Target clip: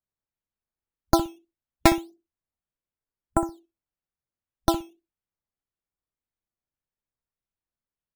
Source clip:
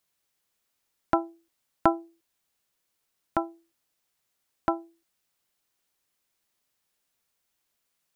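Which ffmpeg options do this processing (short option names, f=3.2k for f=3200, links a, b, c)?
-filter_complex "[0:a]aemphasis=mode=reproduction:type=bsi,afwtdn=0.00501,highshelf=f=4.3k:g=-10,acrusher=samples=10:mix=1:aa=0.000001:lfo=1:lforange=10:lforate=1.7,asplit=2[a][b];[b]adelay=62,lowpass=f=900:p=1,volume=-10dB,asplit=2[c][d];[d]adelay=62,lowpass=f=900:p=1,volume=0.17[e];[a][c][e]amix=inputs=3:normalize=0,volume=2.5dB"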